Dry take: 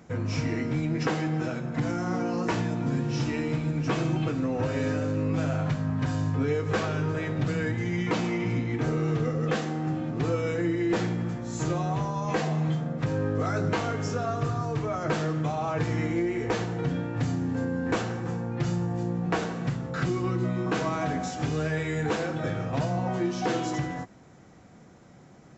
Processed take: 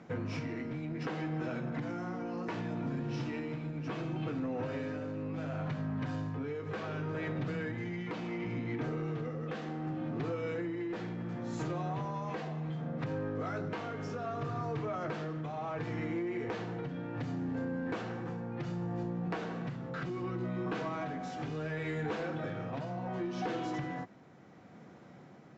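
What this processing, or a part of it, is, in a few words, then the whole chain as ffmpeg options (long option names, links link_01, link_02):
AM radio: -af "highpass=130,lowpass=3900,acompressor=threshold=-31dB:ratio=6,asoftclip=type=tanh:threshold=-26.5dB,tremolo=f=0.68:d=0.32"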